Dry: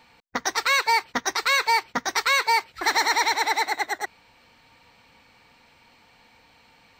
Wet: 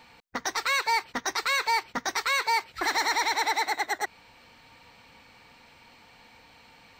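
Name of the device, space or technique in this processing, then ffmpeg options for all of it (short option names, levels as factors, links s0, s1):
soft clipper into limiter: -af "asoftclip=type=tanh:threshold=0.266,alimiter=limit=0.106:level=0:latency=1:release=132,volume=1.26"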